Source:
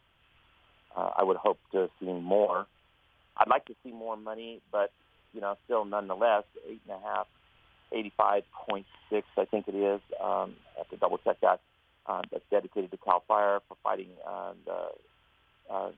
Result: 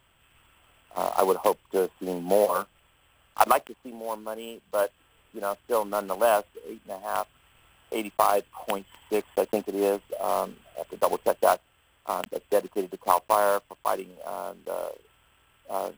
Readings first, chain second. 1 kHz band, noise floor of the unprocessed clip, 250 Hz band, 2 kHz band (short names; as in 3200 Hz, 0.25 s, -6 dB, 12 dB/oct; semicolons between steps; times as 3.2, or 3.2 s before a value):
+3.5 dB, -68 dBFS, +3.5 dB, +3.5 dB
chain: block floating point 5-bit; careless resampling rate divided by 4×, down none, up hold; gain +3.5 dB